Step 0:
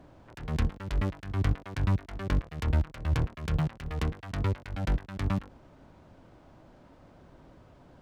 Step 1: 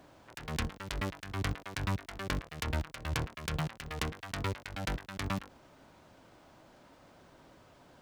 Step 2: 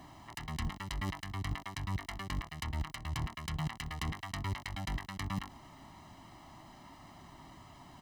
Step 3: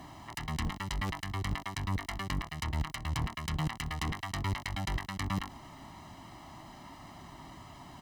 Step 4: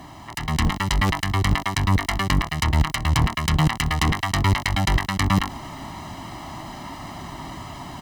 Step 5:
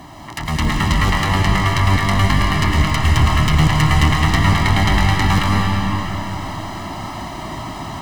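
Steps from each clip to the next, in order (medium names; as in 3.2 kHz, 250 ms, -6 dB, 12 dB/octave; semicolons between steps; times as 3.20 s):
tilt EQ +2.5 dB/octave
comb 1 ms, depth 91%; reverse; compression 6:1, threshold -36 dBFS, peak gain reduction 13 dB; reverse; trim +2.5 dB
one-sided clip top -36.5 dBFS; trim +4.5 dB
level rider gain up to 7 dB; trim +7 dB
saturation -9 dBFS, distortion -19 dB; algorithmic reverb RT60 3.9 s, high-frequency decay 0.8×, pre-delay 70 ms, DRR -2.5 dB; trim +3 dB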